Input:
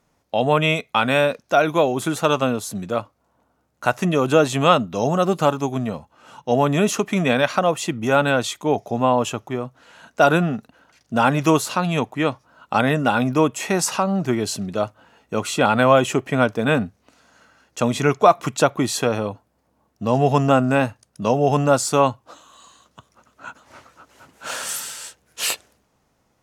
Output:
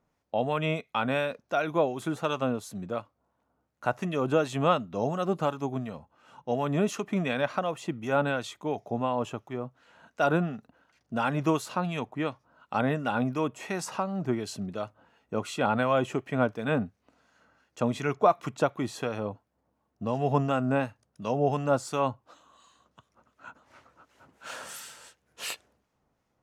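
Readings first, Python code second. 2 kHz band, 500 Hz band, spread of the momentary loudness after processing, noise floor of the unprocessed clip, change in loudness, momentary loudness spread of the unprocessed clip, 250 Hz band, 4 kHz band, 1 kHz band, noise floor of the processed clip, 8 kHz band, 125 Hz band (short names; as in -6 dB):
-10.5 dB, -9.5 dB, 12 LU, -67 dBFS, -9.5 dB, 12 LU, -9.0 dB, -12.5 dB, -9.5 dB, -77 dBFS, -15.5 dB, -9.0 dB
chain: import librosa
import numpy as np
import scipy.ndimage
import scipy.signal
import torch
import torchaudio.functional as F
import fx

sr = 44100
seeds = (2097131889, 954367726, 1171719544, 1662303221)

y = fx.high_shelf(x, sr, hz=4000.0, db=-8.5)
y = fx.harmonic_tremolo(y, sr, hz=2.8, depth_pct=50, crossover_hz=1400.0)
y = F.gain(torch.from_numpy(y), -6.5).numpy()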